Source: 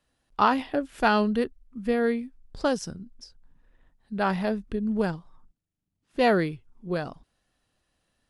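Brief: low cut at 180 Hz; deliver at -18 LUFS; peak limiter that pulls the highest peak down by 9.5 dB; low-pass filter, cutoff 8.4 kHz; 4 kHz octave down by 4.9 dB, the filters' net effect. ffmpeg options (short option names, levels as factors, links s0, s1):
-af "highpass=180,lowpass=8400,equalizer=f=4000:t=o:g=-6.5,volume=3.98,alimiter=limit=0.531:level=0:latency=1"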